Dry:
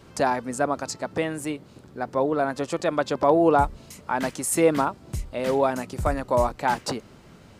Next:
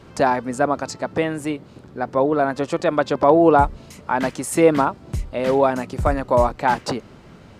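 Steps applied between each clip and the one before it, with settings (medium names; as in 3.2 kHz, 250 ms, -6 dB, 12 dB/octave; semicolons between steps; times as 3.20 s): treble shelf 5.9 kHz -10 dB; trim +5 dB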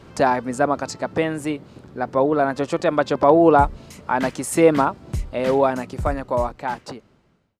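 fade out at the end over 2.17 s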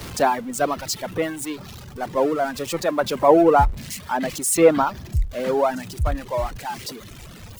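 jump at every zero crossing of -20 dBFS; reverb removal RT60 1.7 s; three bands expanded up and down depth 70%; trim -4 dB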